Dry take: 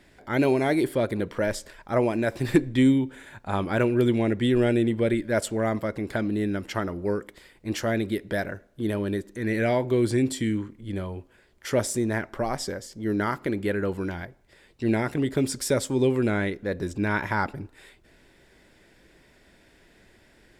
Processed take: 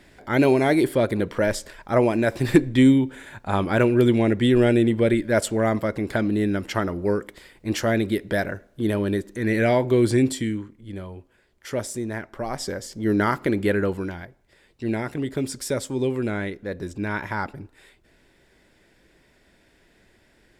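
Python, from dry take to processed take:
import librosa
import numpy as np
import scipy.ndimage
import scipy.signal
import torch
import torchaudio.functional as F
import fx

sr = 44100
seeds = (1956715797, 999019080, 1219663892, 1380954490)

y = fx.gain(x, sr, db=fx.line((10.24, 4.0), (10.68, -3.5), (12.35, -3.5), (12.87, 5.0), (13.78, 5.0), (14.2, -2.0)))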